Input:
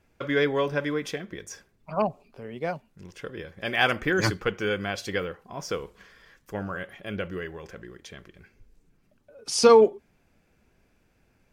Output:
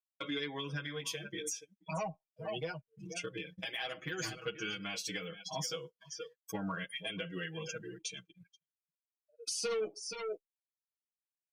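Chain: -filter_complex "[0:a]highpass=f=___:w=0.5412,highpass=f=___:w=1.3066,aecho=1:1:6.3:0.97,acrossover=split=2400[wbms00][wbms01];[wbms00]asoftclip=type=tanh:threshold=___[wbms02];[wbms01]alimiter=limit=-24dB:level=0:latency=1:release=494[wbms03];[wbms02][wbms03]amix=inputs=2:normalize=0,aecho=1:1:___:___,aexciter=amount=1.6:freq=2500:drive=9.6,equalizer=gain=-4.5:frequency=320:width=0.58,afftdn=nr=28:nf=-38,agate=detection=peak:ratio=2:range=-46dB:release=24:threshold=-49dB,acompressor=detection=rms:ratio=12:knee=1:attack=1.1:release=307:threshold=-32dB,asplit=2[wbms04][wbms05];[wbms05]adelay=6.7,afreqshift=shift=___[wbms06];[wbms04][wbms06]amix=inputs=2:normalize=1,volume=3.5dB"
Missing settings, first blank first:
120, 120, -12.5dB, 476, 0.168, -0.61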